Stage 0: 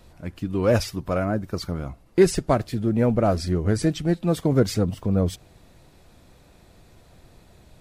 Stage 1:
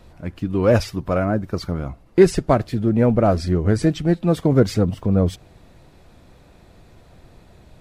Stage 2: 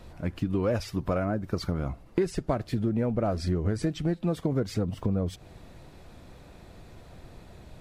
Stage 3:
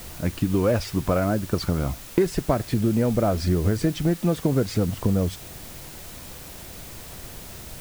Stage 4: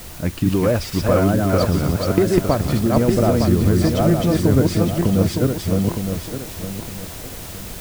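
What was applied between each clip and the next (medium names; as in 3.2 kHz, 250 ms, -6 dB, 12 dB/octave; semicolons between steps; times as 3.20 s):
treble shelf 4.6 kHz -8 dB; trim +4 dB
compression 6:1, threshold -24 dBFS, peak gain reduction 16 dB
word length cut 8-bit, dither triangular; trim +5.5 dB
backward echo that repeats 456 ms, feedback 54%, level -1 dB; trim +3 dB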